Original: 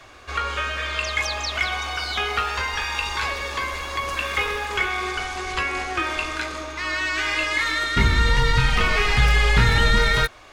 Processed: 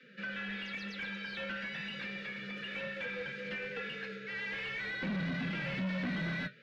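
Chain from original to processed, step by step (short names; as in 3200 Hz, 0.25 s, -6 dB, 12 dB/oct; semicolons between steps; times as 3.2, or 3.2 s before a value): elliptic band-stop 410–1400 Hz, stop band 40 dB; low shelf 140 Hz -3.5 dB; time stretch by phase-locked vocoder 0.63×; frequency shift +130 Hz; flange 1 Hz, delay 3.1 ms, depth 7.2 ms, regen +65%; soft clip -32 dBFS, distortion -5 dB; air absorption 330 m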